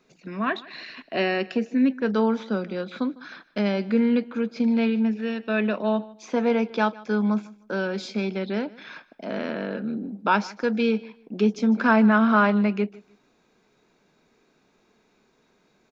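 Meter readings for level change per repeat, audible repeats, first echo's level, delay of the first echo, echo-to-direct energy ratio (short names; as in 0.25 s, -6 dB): -13.0 dB, 2, -21.0 dB, 0.153 s, -21.0 dB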